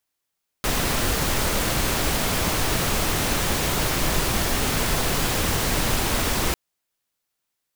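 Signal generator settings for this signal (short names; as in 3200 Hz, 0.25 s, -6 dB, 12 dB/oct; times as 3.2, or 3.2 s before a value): noise pink, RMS -22.5 dBFS 5.90 s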